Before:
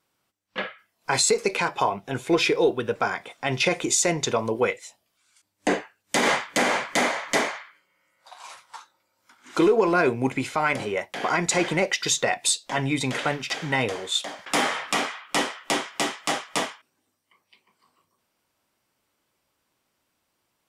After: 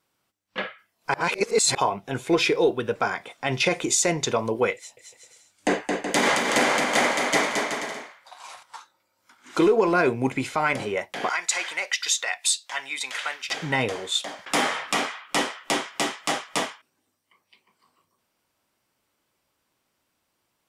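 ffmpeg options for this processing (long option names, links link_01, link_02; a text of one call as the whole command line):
ffmpeg -i in.wav -filter_complex "[0:a]asettb=1/sr,asplit=3[link_01][link_02][link_03];[link_01]atrim=end=4.754[link_04];[link_02]atrim=start=4.75:end=8.63,asetpts=PTS-STARTPTS,afade=type=in:duration=0.004:curve=qsin,afade=type=out:start_time=3.876:duration=0.004:curve=qsin,aecho=1:1:220|374|481.8|557.3|610.1:0.631|0.398|0.251|0.158|0.1,atrim=end_sample=171108[link_05];[link_03]atrim=start=8.626[link_06];[link_04][link_05]acrossfade=duration=0.004:curve1=hsin:curve2=qsin[link_07];[link_07][link_06]acrossfade=duration=0.004:curve1=qsin:curve2=hsin,asettb=1/sr,asplit=3[link_08][link_09][link_10];[link_08]atrim=end=11.294[link_11];[link_09]atrim=start=11.29:end=13.49,asetpts=PTS-STARTPTS,afade=type=in:duration=0.004:curve=qsin,afade=type=out:start_time=2.196:duration=0.004:curve=qsin,highpass=1200[link_12];[link_10]atrim=start=13.486[link_13];[link_11][link_12]acrossfade=duration=0.004:curve1=hsin:curve2=qsin[link_14];[link_14][link_13]acrossfade=duration=0.004:curve1=qsin:curve2=hsin,asplit=3[link_15][link_16][link_17];[link_15]atrim=end=1.142[link_18];[link_16]atrim=start=1.138:end=1.752,asetpts=PTS-STARTPTS,areverse[link_19];[link_17]atrim=start=1.748[link_20];[link_18][link_19]acrossfade=duration=0.004:curve1=hsin:curve2=hsin[link_21];[link_21][link_20]acrossfade=duration=0.004:curve1=hsin:curve2=hsin" out.wav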